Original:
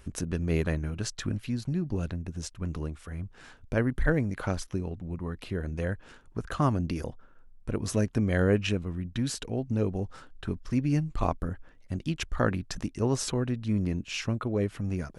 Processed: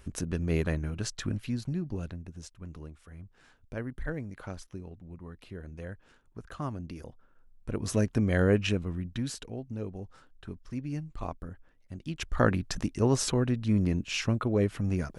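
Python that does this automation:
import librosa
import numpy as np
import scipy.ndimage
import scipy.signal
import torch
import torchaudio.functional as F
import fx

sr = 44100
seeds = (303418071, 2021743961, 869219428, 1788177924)

y = fx.gain(x, sr, db=fx.line((1.54, -1.0), (2.62, -10.0), (7.01, -10.0), (7.97, 0.0), (8.94, 0.0), (9.7, -9.0), (11.97, -9.0), (12.4, 2.0)))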